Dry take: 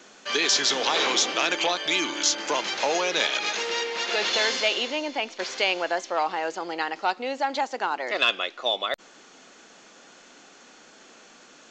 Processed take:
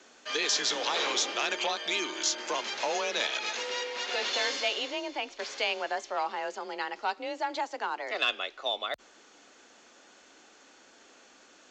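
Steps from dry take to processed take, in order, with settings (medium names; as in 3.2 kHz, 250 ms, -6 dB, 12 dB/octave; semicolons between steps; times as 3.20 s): frequency shift +30 Hz; trim -6 dB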